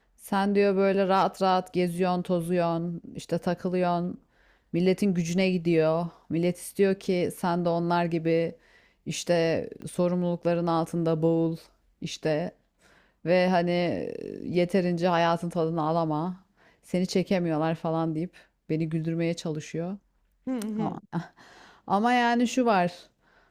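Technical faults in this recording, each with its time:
0:09.82: click −29 dBFS

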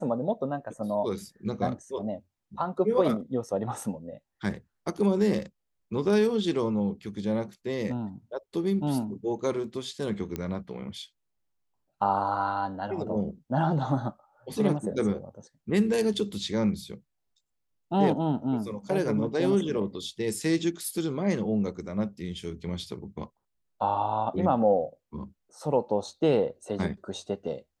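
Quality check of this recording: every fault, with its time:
0:10.36: click −18 dBFS

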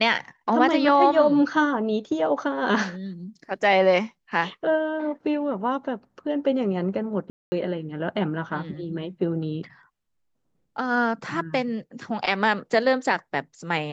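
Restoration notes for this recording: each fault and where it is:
0:07.30–0:07.52: drop-out 220 ms

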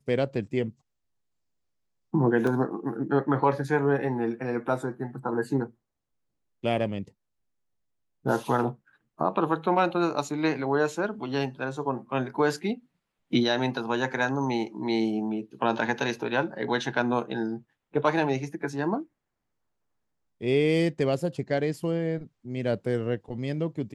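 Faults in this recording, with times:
0:02.47: drop-out 3 ms

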